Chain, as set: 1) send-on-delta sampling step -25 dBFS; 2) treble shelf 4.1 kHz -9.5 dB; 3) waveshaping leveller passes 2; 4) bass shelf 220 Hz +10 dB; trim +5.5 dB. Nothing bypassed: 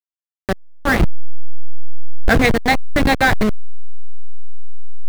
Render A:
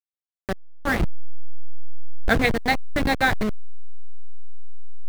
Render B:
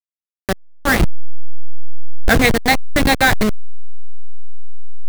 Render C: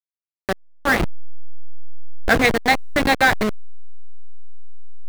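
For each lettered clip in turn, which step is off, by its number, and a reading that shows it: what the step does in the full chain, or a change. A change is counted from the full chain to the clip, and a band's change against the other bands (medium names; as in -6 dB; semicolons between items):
3, crest factor change +7.0 dB; 2, 4 kHz band +4.0 dB; 4, 125 Hz band -7.0 dB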